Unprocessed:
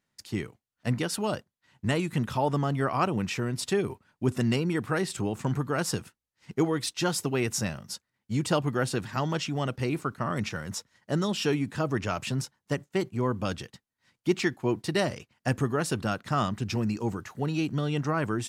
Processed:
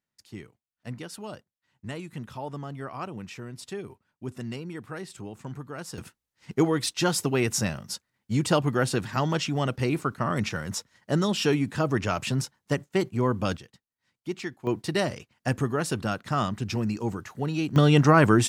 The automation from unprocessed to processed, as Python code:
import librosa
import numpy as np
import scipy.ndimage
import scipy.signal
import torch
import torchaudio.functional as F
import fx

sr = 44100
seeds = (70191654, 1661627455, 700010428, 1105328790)

y = fx.gain(x, sr, db=fx.steps((0.0, -9.5), (5.98, 3.0), (13.57, -7.5), (14.67, 0.5), (17.76, 10.5)))